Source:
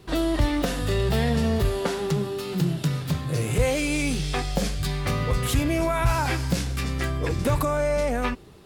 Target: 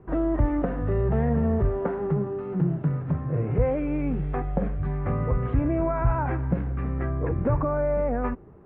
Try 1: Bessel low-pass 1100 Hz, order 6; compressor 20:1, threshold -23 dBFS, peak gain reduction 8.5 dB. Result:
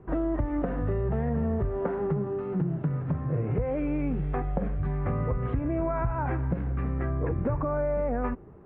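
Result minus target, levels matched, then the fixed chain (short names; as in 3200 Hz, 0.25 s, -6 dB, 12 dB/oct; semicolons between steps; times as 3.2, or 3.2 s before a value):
compressor: peak gain reduction +8.5 dB
Bessel low-pass 1100 Hz, order 6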